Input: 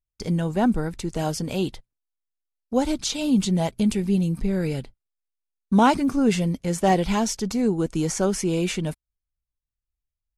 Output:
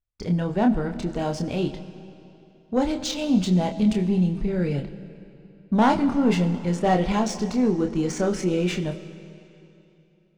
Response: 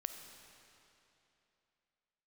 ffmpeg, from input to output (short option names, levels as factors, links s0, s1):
-filter_complex "[0:a]asoftclip=type=tanh:threshold=0.251,adynamicsmooth=sensitivity=2:basefreq=3800,asplit=2[s0][s1];[1:a]atrim=start_sample=2205,adelay=28[s2];[s1][s2]afir=irnorm=-1:irlink=0,volume=0.708[s3];[s0][s3]amix=inputs=2:normalize=0"